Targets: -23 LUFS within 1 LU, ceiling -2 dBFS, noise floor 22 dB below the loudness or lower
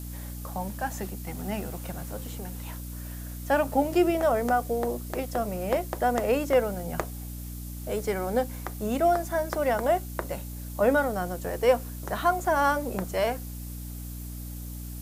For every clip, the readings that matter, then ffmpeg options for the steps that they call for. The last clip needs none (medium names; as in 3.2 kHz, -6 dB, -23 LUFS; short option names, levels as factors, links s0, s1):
hum 60 Hz; highest harmonic 300 Hz; hum level -35 dBFS; noise floor -38 dBFS; noise floor target -50 dBFS; loudness -28.0 LUFS; peak level -10.0 dBFS; loudness target -23.0 LUFS
-> -af "bandreject=f=60:t=h:w=6,bandreject=f=120:t=h:w=6,bandreject=f=180:t=h:w=6,bandreject=f=240:t=h:w=6,bandreject=f=300:t=h:w=6"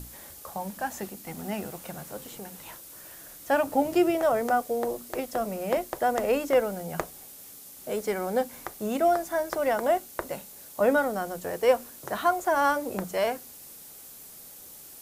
hum not found; noise floor -47 dBFS; noise floor target -50 dBFS
-> -af "afftdn=nr=6:nf=-47"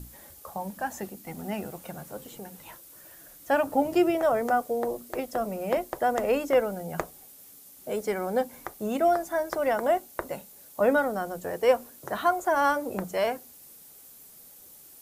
noise floor -51 dBFS; loudness -27.5 LUFS; peak level -10.0 dBFS; loudness target -23.0 LUFS
-> -af "volume=1.68"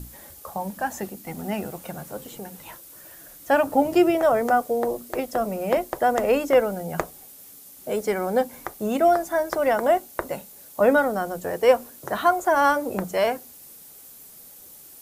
loudness -23.0 LUFS; peak level -5.5 dBFS; noise floor -46 dBFS